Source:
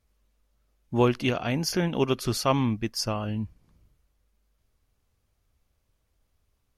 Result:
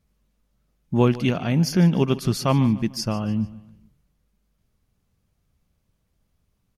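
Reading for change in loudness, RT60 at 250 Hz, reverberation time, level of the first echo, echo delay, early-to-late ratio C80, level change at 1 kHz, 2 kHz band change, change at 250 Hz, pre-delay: +5.0 dB, none, none, -18.0 dB, 0.148 s, none, +0.5 dB, 0.0 dB, +6.5 dB, none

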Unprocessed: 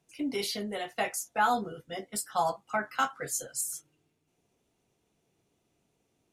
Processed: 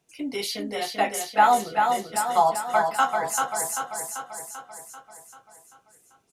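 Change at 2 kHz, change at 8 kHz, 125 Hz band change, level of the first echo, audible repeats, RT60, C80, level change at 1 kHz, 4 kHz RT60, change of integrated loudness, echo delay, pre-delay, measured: +6.0 dB, +5.5 dB, +2.0 dB, -4.5 dB, 7, none, none, +10.5 dB, none, +7.5 dB, 0.39 s, none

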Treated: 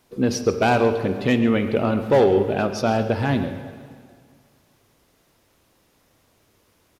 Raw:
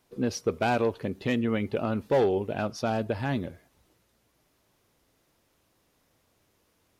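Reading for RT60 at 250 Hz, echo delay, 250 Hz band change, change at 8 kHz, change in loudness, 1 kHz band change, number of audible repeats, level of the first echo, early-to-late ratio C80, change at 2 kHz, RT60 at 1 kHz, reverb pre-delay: 2.1 s, 0.136 s, +8.0 dB, +7.5 dB, +8.0 dB, +7.5 dB, 1, -15.0 dB, 9.5 dB, +7.5 dB, 2.0 s, 27 ms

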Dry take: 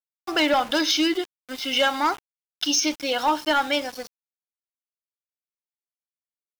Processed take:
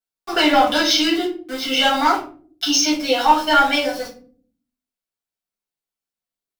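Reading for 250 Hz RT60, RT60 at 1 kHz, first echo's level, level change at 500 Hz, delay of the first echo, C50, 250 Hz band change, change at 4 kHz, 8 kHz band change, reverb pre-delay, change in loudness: 0.85 s, 0.40 s, none, +4.5 dB, none, 8.0 dB, +5.0 dB, +5.0 dB, +4.0 dB, 4 ms, +5.5 dB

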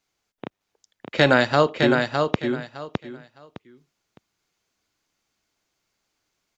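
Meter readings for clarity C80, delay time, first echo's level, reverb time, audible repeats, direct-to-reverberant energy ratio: none, 0.61 s, -4.5 dB, none, 3, none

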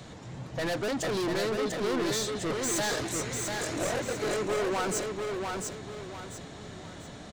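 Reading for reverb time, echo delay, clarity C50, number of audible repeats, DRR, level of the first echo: none, 0.694 s, none, 4, none, -4.0 dB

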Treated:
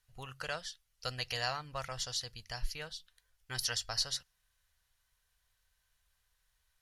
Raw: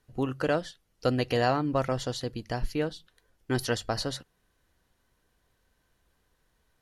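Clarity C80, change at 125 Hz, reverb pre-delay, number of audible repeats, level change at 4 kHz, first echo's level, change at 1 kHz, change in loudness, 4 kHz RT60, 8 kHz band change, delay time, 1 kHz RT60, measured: none, -14.0 dB, none, none, +1.0 dB, none, -10.5 dB, -7.5 dB, none, +2.5 dB, none, none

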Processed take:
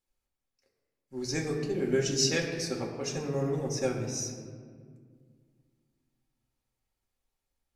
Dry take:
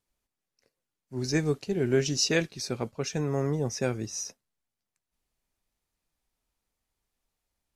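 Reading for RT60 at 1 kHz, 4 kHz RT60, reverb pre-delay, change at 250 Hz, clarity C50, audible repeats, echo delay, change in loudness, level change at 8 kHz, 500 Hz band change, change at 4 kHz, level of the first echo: 1.8 s, 1.0 s, 4 ms, -2.5 dB, 5.0 dB, none, none, -2.0 dB, 0.0 dB, -1.5 dB, -1.0 dB, none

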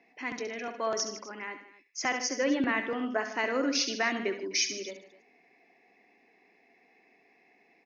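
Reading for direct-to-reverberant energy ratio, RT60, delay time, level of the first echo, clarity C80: none, none, 67 ms, -9.5 dB, none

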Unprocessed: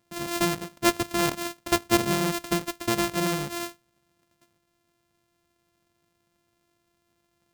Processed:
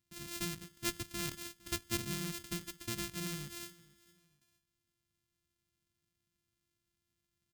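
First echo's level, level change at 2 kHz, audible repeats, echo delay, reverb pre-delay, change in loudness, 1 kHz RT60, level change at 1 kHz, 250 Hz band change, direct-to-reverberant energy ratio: -22.0 dB, -14.0 dB, 2, 0.458 s, none, -13.5 dB, none, -21.0 dB, -16.0 dB, none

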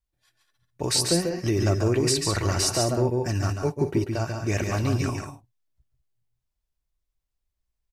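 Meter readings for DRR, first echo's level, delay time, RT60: none, -6.0 dB, 0.141 s, none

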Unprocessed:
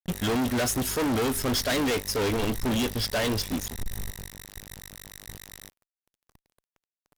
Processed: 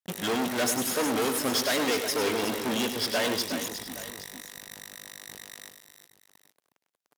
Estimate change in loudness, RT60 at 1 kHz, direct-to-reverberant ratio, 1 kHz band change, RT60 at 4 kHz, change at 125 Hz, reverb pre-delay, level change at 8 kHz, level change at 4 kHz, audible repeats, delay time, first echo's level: -0.5 dB, none, none, +1.0 dB, none, -11.0 dB, none, +1.0 dB, +1.0 dB, 3, 0.1 s, -8.0 dB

